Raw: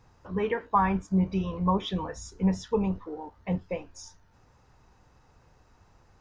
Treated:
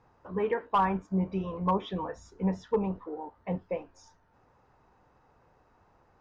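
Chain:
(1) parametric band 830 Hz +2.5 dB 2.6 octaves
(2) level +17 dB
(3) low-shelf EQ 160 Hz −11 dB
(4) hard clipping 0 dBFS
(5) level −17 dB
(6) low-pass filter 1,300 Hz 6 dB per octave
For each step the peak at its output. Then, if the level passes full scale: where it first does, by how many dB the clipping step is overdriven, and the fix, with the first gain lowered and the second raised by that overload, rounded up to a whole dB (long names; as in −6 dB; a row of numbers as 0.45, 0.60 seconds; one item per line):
−9.0, +8.0, +7.5, 0.0, −17.0, −17.0 dBFS
step 2, 7.5 dB
step 2 +9 dB, step 5 −9 dB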